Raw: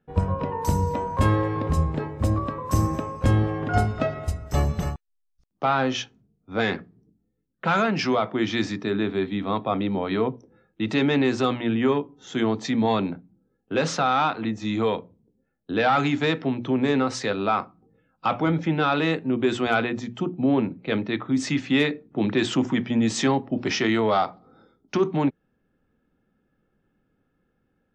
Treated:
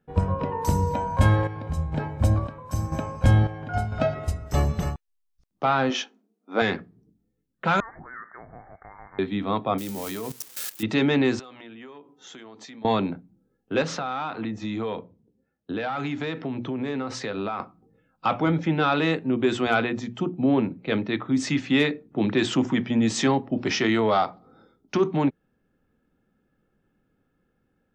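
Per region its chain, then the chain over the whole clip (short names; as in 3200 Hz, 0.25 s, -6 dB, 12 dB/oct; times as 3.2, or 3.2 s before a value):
0.92–4.15 comb 1.3 ms, depth 52% + chopper 1 Hz, depth 60%, duty 55%
5.9–6.62 brick-wall FIR high-pass 200 Hz + bell 850 Hz +4.5 dB 1.8 oct
7.8–9.19 HPF 810 Hz 24 dB/oct + compressor 3:1, threshold -40 dBFS + inverted band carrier 2500 Hz
9.78–10.83 switching spikes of -21.5 dBFS + high shelf 4900 Hz +6 dB + level quantiser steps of 16 dB
11.39–12.85 HPF 510 Hz 6 dB/oct + compressor 12:1, threshold -40 dBFS
13.82–17.6 compressor, threshold -25 dBFS + HPF 48 Hz + high shelf 8000 Hz -11.5 dB
whole clip: dry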